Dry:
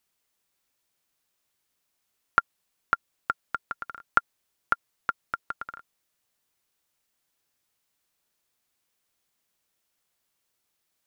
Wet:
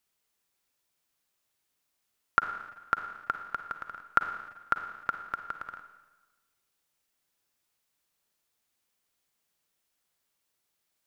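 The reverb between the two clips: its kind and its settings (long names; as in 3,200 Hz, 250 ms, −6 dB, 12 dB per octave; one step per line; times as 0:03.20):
four-comb reverb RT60 1.2 s, DRR 8 dB
level −2.5 dB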